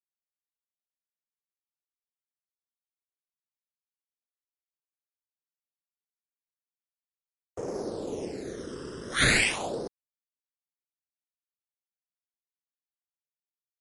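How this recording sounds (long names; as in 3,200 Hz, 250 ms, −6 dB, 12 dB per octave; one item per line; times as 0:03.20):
aliases and images of a low sample rate 5,900 Hz, jitter 20%
phaser sweep stages 12, 0.31 Hz, lowest notch 720–4,900 Hz
a quantiser's noise floor 10 bits, dither none
MP3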